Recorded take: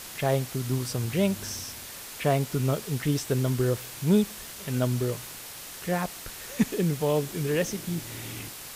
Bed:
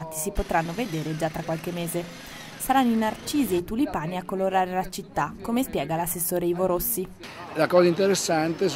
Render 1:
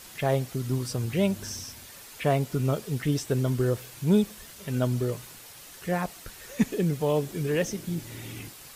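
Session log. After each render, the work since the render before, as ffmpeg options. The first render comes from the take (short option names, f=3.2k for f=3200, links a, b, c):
-af "afftdn=nr=7:nf=-42"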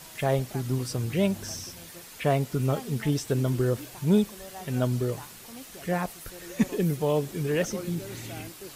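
-filter_complex "[1:a]volume=-20.5dB[a];[0:a][a]amix=inputs=2:normalize=0"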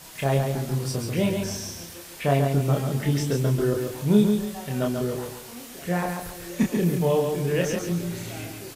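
-filter_complex "[0:a]asplit=2[a][b];[b]adelay=29,volume=-3dB[c];[a][c]amix=inputs=2:normalize=0,aecho=1:1:139|278|417|556:0.562|0.186|0.0612|0.0202"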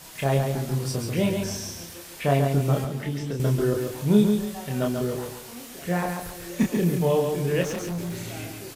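-filter_complex "[0:a]asettb=1/sr,asplit=3[a][b][c];[a]atrim=end=2.844[d];[b]atrim=start=2.84:end=3.4,asetpts=PTS-STARTPTS,afade=t=in:d=0.004:c=qsin,afade=t=out:st=0.556:d=0.004:c=qsin,acrossover=split=110|220|4200[e][f][g][h];[e]acompressor=threshold=-43dB:ratio=3[i];[f]acompressor=threshold=-34dB:ratio=3[j];[g]acompressor=threshold=-33dB:ratio=3[k];[h]acompressor=threshold=-52dB:ratio=3[l];[i][j][k][l]amix=inputs=4:normalize=0[m];[c]atrim=start=3.396[n];[d][m]acrossfade=d=0.004:c1=hsin:c2=qsin[o];[o][n]acrossfade=d=0.004:c1=qsin:c2=hsin,asettb=1/sr,asplit=3[p][q][r];[p]atrim=end=4.774[s];[q]atrim=start=4.77:end=6.84,asetpts=PTS-STARTPTS,afade=t=in:d=0.004:c=qsin,afade=t=out:st=2.066:d=0.004:c=qsin,acrusher=bits=9:mode=log:mix=0:aa=0.000001[t];[r]atrim=start=6.836[u];[s][t]acrossfade=d=0.004:c1=hsin:c2=qsin[v];[v][u]acrossfade=d=0.004:c1=qsin:c2=hsin,asettb=1/sr,asplit=3[w][x][y];[w]atrim=end=7.634[z];[x]atrim=start=7.63:end=8.19,asetpts=PTS-STARTPTS,afade=t=in:d=0.004:c=qsin,afade=t=out:st=0.556:d=0.004:c=qsin,volume=27dB,asoftclip=hard,volume=-27dB[aa];[y]atrim=start=8.186[ab];[z][aa]acrossfade=d=0.004:c1=hsin:c2=qsin[ac];[ac][ab]acrossfade=d=0.004:c1=qsin:c2=hsin"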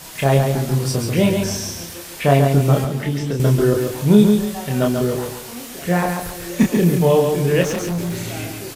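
-af "volume=7.5dB,alimiter=limit=-1dB:level=0:latency=1"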